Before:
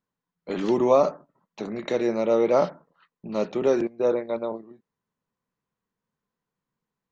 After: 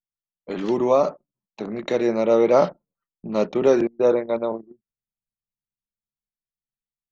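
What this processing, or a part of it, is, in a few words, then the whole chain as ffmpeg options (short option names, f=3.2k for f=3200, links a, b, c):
voice memo with heavy noise removal: -af "anlmdn=0.631,dynaudnorm=f=310:g=11:m=5dB"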